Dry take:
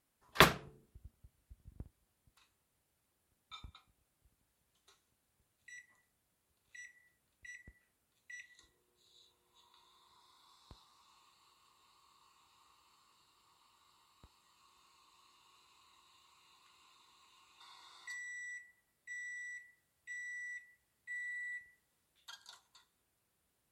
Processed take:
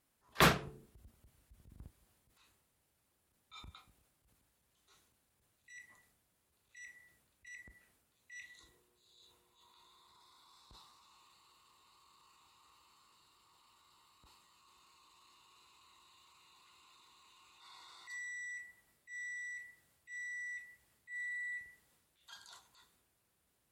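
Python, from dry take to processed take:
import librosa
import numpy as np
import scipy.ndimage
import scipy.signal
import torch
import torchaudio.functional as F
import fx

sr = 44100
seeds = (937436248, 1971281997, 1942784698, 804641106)

y = fx.transient(x, sr, attack_db=-9, sustain_db=5)
y = y * librosa.db_to_amplitude(2.0)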